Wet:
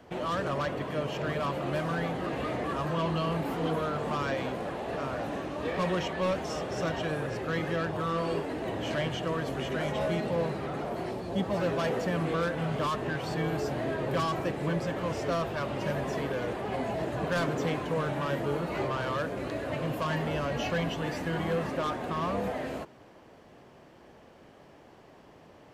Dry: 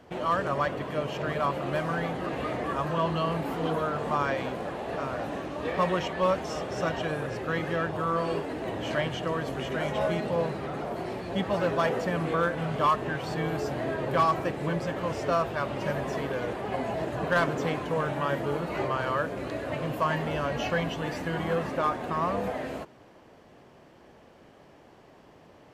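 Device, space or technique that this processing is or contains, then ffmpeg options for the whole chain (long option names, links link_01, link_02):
one-band saturation: -filter_complex "[0:a]asettb=1/sr,asplit=3[link_01][link_02][link_03];[link_01]atrim=end=11.114[link_04];[link_02]atrim=start=11.11:end=11.56,asetpts=PTS-STARTPTS,afade=type=in:duration=0.004:curve=qsin,afade=type=out:start_time=0.446:duration=0.004:curve=qsin,equalizer=frequency=2100:width_type=o:width=1.3:gain=-7[link_05];[link_03]atrim=start=11.556[link_06];[link_04][link_05]acrossfade=duration=0.004:curve1=hsin:curve2=qsin[link_07];[link_07][link_06]acrossfade=duration=0.004:curve1=qsin:curve2=hsin,acrossover=split=440|2900[link_08][link_09][link_10];[link_09]asoftclip=type=tanh:threshold=-29.5dB[link_11];[link_08][link_11][link_10]amix=inputs=3:normalize=0"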